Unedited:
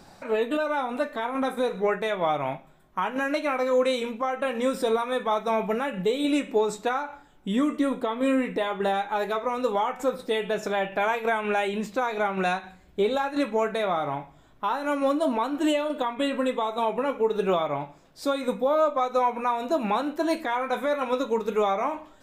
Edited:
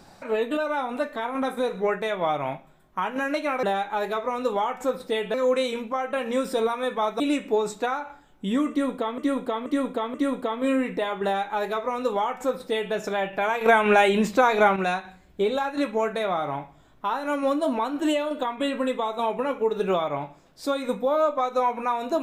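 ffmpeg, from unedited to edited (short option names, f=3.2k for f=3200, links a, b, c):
-filter_complex "[0:a]asplit=9[a][b][c][d][e][f][g][h][i];[a]atrim=end=3.632[j];[b]atrim=start=8.818:end=10.532[k];[c]atrim=start=3.628:end=5.492[l];[d]atrim=start=6.228:end=8.212[m];[e]atrim=start=7.728:end=8.212[n];[f]atrim=start=7.728:end=8.212[o];[g]atrim=start=7.728:end=11.202[p];[h]atrim=start=11.198:end=12.352,asetpts=PTS-STARTPTS,volume=7.5dB[q];[i]atrim=start=12.348[r];[j][k]acrossfade=d=0.004:c1=hsin:c2=hsin[s];[s][l]acrossfade=d=0.004:c1=hsin:c2=hsin[t];[t][m]acrossfade=d=0.004:c1=hsin:c2=hsin[u];[u][n]acrossfade=d=0.004:c1=hsin:c2=hsin[v];[v][o]acrossfade=d=0.004:c1=hsin:c2=hsin[w];[w][p]acrossfade=d=0.004:c1=hsin:c2=hsin[x];[x][q]acrossfade=d=0.004:c1=hsin:c2=hsin[y];[y][r]acrossfade=d=0.004:c1=hsin:c2=hsin"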